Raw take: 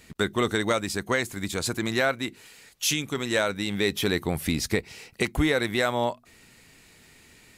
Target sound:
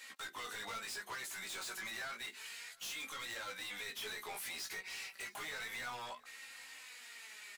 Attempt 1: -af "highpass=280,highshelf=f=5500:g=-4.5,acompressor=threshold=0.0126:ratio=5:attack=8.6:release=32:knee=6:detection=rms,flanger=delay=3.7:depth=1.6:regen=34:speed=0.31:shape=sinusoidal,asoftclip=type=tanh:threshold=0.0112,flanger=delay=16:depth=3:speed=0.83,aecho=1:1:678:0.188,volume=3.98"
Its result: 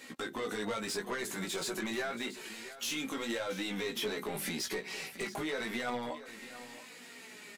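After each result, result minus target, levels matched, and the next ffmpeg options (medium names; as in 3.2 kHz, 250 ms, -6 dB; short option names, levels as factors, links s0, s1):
250 Hz band +15.0 dB; echo-to-direct +10.5 dB; saturation: distortion -8 dB
-af "highpass=1100,highshelf=f=5500:g=-4.5,acompressor=threshold=0.0126:ratio=5:attack=8.6:release=32:knee=6:detection=rms,flanger=delay=3.7:depth=1.6:regen=34:speed=0.31:shape=sinusoidal,asoftclip=type=tanh:threshold=0.0112,flanger=delay=16:depth=3:speed=0.83,aecho=1:1:678:0.188,volume=3.98"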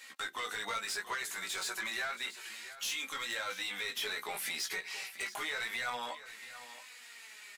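echo-to-direct +10.5 dB; saturation: distortion -8 dB
-af "highpass=1100,highshelf=f=5500:g=-4.5,acompressor=threshold=0.0126:ratio=5:attack=8.6:release=32:knee=6:detection=rms,flanger=delay=3.7:depth=1.6:regen=34:speed=0.31:shape=sinusoidal,asoftclip=type=tanh:threshold=0.0112,flanger=delay=16:depth=3:speed=0.83,aecho=1:1:678:0.0562,volume=3.98"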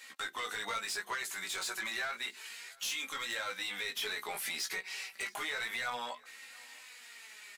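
saturation: distortion -8 dB
-af "highpass=1100,highshelf=f=5500:g=-4.5,acompressor=threshold=0.0126:ratio=5:attack=8.6:release=32:knee=6:detection=rms,flanger=delay=3.7:depth=1.6:regen=34:speed=0.31:shape=sinusoidal,asoftclip=type=tanh:threshold=0.00299,flanger=delay=16:depth=3:speed=0.83,aecho=1:1:678:0.0562,volume=3.98"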